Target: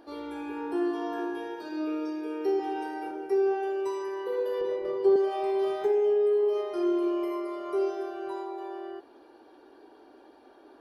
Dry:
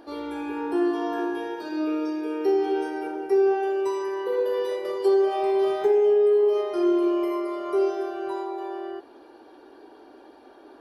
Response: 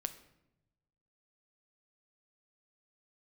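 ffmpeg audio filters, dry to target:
-filter_complex "[0:a]asettb=1/sr,asplit=3[a][b][c];[a]atrim=end=2.584[d];[b]atrim=start=2.58:end=3.11,asetpts=PTS-STARTPTS,afade=t=in:d=0.004:c=qsin,afade=t=out:st=0.526:d=0.004:c=qsin,asplit=2[e][f];[f]adelay=14,volume=-3dB[g];[e][g]amix=inputs=2:normalize=0,atrim=end_sample=23373[h];[c]atrim=start=3.106[i];[d][h]acrossfade=d=0.004:c1=hsin:c2=qsin[j];[j][i]acrossfade=d=0.004:c1=qsin:c2=hsin,asettb=1/sr,asplit=3[k][l][m];[k]atrim=end=4.614[n];[l]atrim=start=4.61:end=5.16,asetpts=PTS-STARTPTS,afade=t=in:d=0.004:c=qsin,afade=t=out:st=0.546:d=0.004:c=qsin,aemphasis=mode=reproduction:type=riaa[o];[m]atrim=start=5.156[p];[n][o]acrossfade=d=0.004:c1=hsin:c2=qsin[q];[q][p]acrossfade=d=0.004:c1=qsin:c2=hsin,volume=-5dB"

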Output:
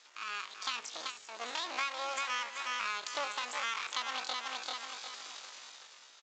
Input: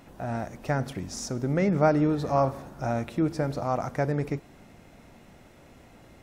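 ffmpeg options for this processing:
-filter_complex "[0:a]aeval=exprs='max(val(0),0)':c=same,aemphasis=mode=production:type=riaa,dynaudnorm=f=110:g=13:m=14dB,highpass=f=1.2k:p=1,asplit=2[a][b];[b]aecho=0:1:376|752|1128|1504:0.376|0.128|0.0434|0.0148[c];[a][c]amix=inputs=2:normalize=0,asetrate=78577,aresample=44100,atempo=0.561231,asplit=2[d][e];[e]asoftclip=type=tanh:threshold=-26.5dB,volume=-12dB[f];[d][f]amix=inputs=2:normalize=0,acompressor=threshold=-32dB:ratio=6,aresample=16000,aresample=44100"

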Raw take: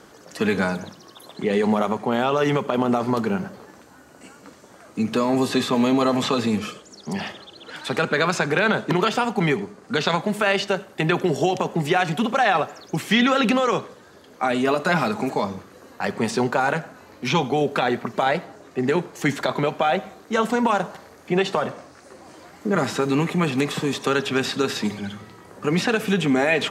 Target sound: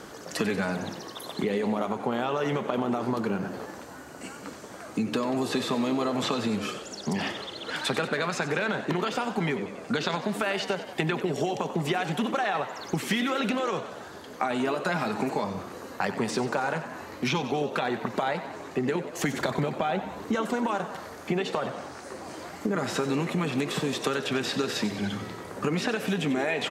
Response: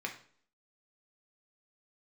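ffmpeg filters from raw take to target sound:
-filter_complex "[0:a]asettb=1/sr,asplit=3[a][b][c];[a]atrim=end=19.344[d];[b]atrim=start=19.34:end=20.35,asetpts=PTS-STARTPTS,afade=t=in:d=0.004:c=qsin,afade=t=out:st=1.006:d=0.004:c=qsin,lowshelf=f=260:g=10.5[e];[c]atrim=start=20.346[f];[d][e]acrossfade=d=0.004:c1=hsin:c2=qsin[g];[g][f]acrossfade=d=0.004:c1=qsin:c2=hsin,acompressor=threshold=-30dB:ratio=6,asplit=9[h][i][j][k][l][m][n][o][p];[i]adelay=93,afreqshift=80,volume=-13dB[q];[j]adelay=186,afreqshift=160,volume=-16.7dB[r];[k]adelay=279,afreqshift=240,volume=-20.5dB[s];[l]adelay=372,afreqshift=320,volume=-24.2dB[t];[m]adelay=465,afreqshift=400,volume=-28dB[u];[n]adelay=558,afreqshift=480,volume=-31.7dB[v];[o]adelay=651,afreqshift=560,volume=-35.5dB[w];[p]adelay=744,afreqshift=640,volume=-39.2dB[x];[h][q][r][s][t][u][v][w][x]amix=inputs=9:normalize=0,volume=4.5dB"

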